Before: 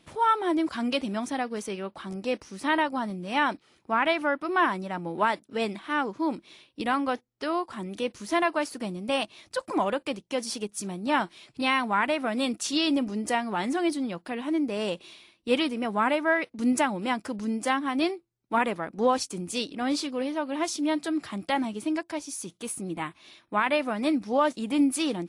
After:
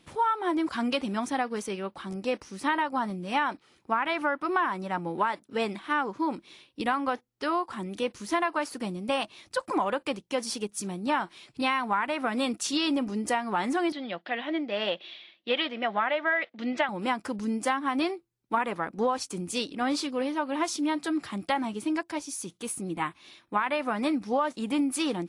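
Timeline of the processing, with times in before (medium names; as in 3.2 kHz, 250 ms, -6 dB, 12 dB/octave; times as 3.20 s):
13.92–16.89 s: cabinet simulation 250–4400 Hz, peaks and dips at 270 Hz -6 dB, 430 Hz -6 dB, 640 Hz +8 dB, 1 kHz -6 dB, 1.9 kHz +7 dB, 3.3 kHz +8 dB
whole clip: band-stop 640 Hz, Q 12; dynamic bell 1.1 kHz, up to +6 dB, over -37 dBFS, Q 0.76; compression, threshold -23 dBFS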